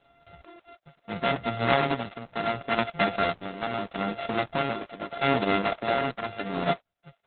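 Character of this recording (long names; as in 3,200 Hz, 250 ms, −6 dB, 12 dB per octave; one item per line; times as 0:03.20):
a buzz of ramps at a fixed pitch in blocks of 64 samples
tremolo triangle 0.77 Hz, depth 75%
Opus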